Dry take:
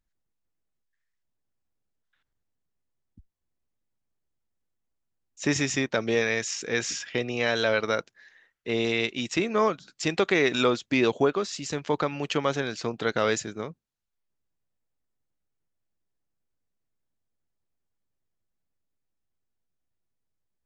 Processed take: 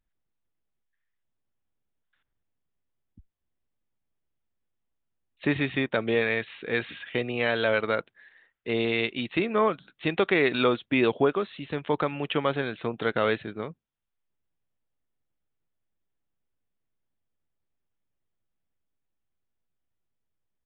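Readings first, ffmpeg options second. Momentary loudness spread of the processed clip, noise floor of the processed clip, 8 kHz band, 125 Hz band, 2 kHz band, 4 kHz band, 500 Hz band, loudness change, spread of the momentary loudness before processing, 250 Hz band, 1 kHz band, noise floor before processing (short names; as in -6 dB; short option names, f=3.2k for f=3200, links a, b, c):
9 LU, -80 dBFS, under -40 dB, 0.0 dB, 0.0 dB, -3.0 dB, 0.0 dB, -0.5 dB, 8 LU, 0.0 dB, 0.0 dB, -80 dBFS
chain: -af "aresample=8000,aresample=44100"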